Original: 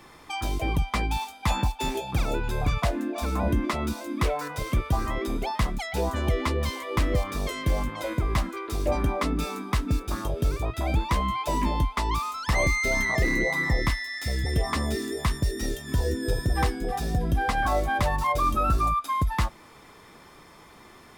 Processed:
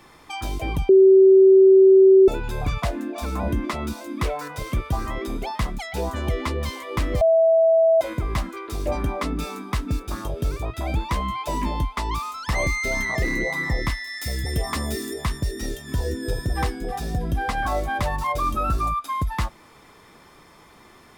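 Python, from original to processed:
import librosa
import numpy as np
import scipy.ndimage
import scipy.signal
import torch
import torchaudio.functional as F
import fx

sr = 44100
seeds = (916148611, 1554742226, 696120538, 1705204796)

y = fx.high_shelf(x, sr, hz=9000.0, db=11.0, at=(14.07, 15.14))
y = fx.edit(y, sr, fx.bleep(start_s=0.89, length_s=1.39, hz=383.0, db=-8.5),
    fx.bleep(start_s=7.21, length_s=0.8, hz=654.0, db=-13.0), tone=tone)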